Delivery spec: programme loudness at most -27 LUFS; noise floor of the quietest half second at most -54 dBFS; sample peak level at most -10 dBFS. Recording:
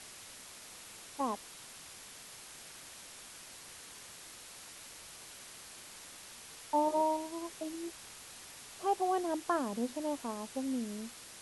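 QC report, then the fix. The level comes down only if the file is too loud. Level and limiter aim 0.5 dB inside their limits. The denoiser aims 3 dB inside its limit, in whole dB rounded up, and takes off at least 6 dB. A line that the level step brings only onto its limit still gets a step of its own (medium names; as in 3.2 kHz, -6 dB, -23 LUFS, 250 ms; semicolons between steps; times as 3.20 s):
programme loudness -39.0 LUFS: pass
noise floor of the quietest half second -51 dBFS: fail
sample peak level -19.0 dBFS: pass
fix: noise reduction 6 dB, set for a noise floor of -51 dBFS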